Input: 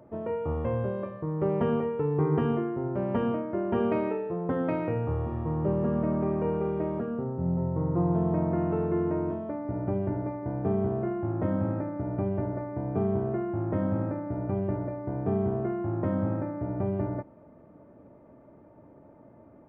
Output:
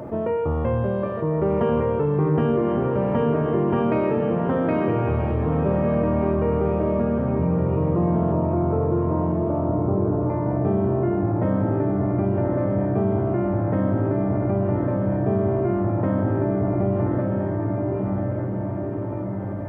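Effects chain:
0:08.32–0:10.30: Butterworth low-pass 1,300 Hz 36 dB per octave
feedback delay with all-pass diffusion 1,163 ms, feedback 43%, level −4.5 dB
reverb whose tail is shaped and stops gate 250 ms rising, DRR 10.5 dB
envelope flattener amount 50%
level +3 dB

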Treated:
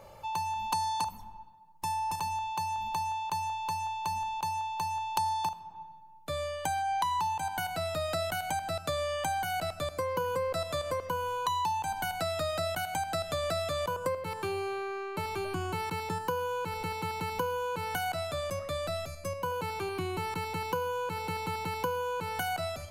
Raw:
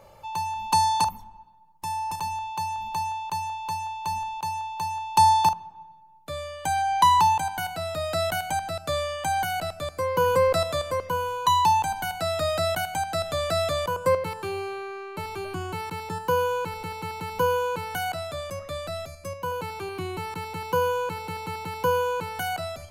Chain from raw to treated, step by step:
downward compressor 6 to 1, threshold −29 dBFS, peak gain reduction 14.5 dB
convolution reverb RT60 0.45 s, pre-delay 55 ms, DRR 19.5 dB

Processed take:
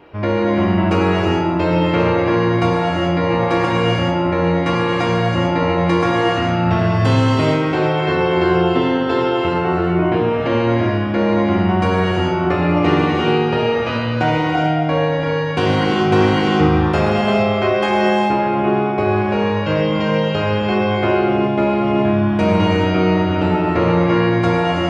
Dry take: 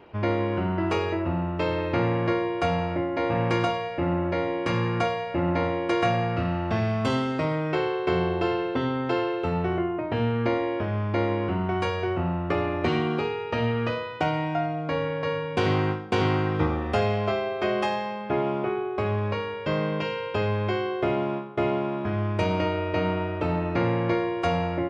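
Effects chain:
reverb whose tail is shaped and stops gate 470 ms flat, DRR −4.5 dB
level +4 dB

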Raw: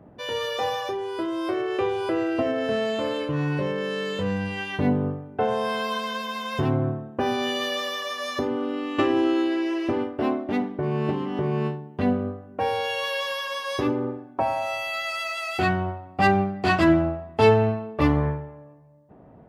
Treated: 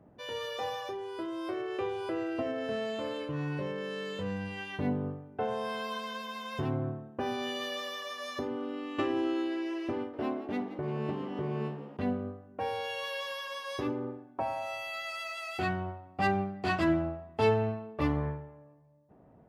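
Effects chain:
0:09.96–0:11.97: echo with shifted repeats 173 ms, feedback 62%, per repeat +65 Hz, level −14 dB
level −9 dB

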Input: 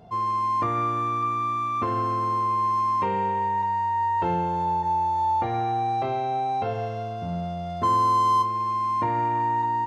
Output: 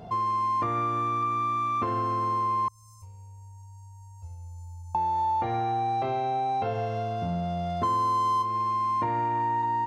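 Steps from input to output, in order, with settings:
0:02.68–0:04.95: inverse Chebyshev band-stop filter 150–3,700 Hz, stop band 40 dB
downward compressor 2.5 to 1, threshold −35 dBFS, peak gain reduction 11 dB
level +6 dB

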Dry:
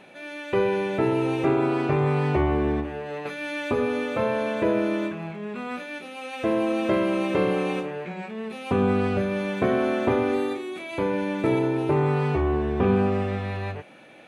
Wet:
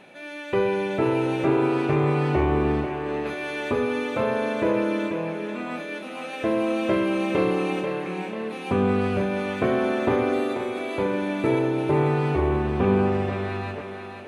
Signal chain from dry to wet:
on a send: feedback echo with a high-pass in the loop 489 ms, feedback 52%, high-pass 190 Hz, level −7 dB

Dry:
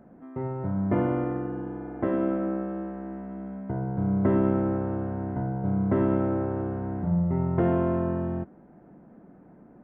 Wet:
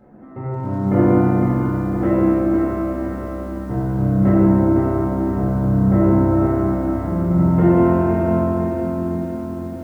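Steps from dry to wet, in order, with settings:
0:04.29–0:06.32: low-pass filter 1,800 Hz 12 dB per octave
convolution reverb RT60 3.0 s, pre-delay 4 ms, DRR −7.5 dB
feedback echo at a low word length 509 ms, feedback 55%, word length 8 bits, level −6 dB
level −1 dB

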